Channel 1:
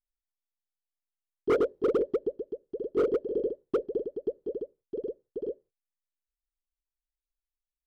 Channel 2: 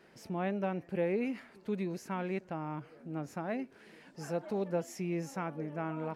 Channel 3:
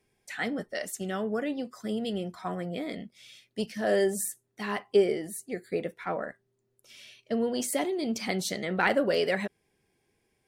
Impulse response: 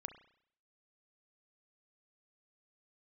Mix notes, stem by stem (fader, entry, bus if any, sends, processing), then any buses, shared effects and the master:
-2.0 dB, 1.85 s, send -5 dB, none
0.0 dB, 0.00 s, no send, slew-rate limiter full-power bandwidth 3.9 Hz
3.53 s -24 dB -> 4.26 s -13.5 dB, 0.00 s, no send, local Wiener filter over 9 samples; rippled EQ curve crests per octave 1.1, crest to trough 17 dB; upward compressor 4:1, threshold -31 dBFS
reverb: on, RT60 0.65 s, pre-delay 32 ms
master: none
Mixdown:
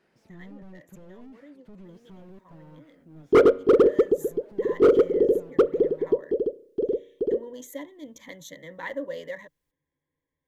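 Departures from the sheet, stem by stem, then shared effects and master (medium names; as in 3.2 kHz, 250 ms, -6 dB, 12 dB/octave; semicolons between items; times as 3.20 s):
stem 1 -2.0 dB -> +6.5 dB; stem 2 0.0 dB -> -7.5 dB; stem 3: missing upward compressor 4:1, threshold -31 dBFS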